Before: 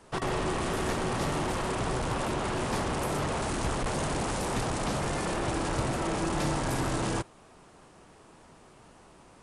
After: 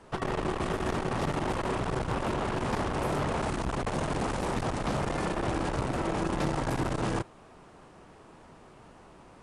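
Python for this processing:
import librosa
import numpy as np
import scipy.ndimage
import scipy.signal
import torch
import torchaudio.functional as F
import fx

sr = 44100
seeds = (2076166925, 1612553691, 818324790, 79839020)

y = fx.high_shelf(x, sr, hz=4600.0, db=-10.0)
y = fx.transformer_sat(y, sr, knee_hz=220.0)
y = F.gain(torch.from_numpy(y), 2.5).numpy()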